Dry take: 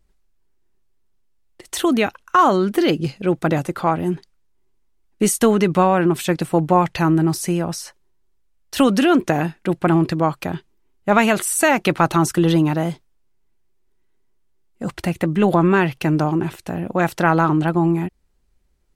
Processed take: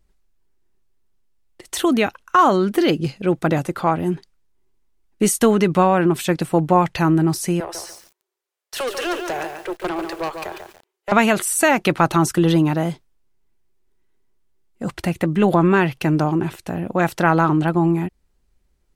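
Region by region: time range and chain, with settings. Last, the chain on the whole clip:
0:07.60–0:11.12: Butterworth high-pass 350 Hz 72 dB per octave + tube saturation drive 20 dB, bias 0.35 + feedback echo at a low word length 143 ms, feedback 35%, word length 7 bits, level −6 dB
whole clip: no processing

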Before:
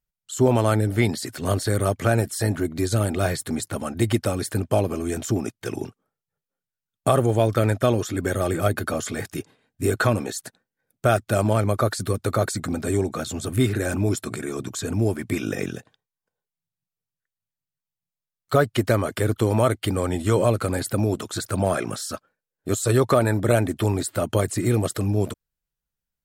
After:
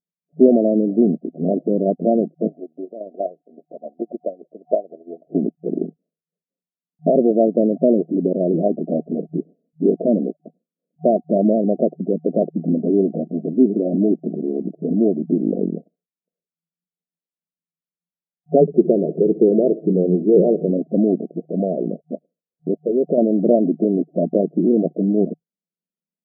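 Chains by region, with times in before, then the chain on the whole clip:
0:02.47–0:05.35: high-pass filter 960 Hz + transient designer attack +11 dB, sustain −10 dB
0:18.61–0:20.71: EQ curve with evenly spaced ripples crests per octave 0.75, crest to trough 10 dB + repeating echo 65 ms, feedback 39%, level −17 dB
0:21.26–0:23.18: downward compressor 2 to 1, threshold −26 dBFS + dynamic equaliser 460 Hz, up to +5 dB, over −41 dBFS, Q 2.7
whole clip: noise gate −42 dBFS, range −8 dB; brick-wall band-pass 160–730 Hz; low-shelf EQ 420 Hz +11 dB; level +1 dB

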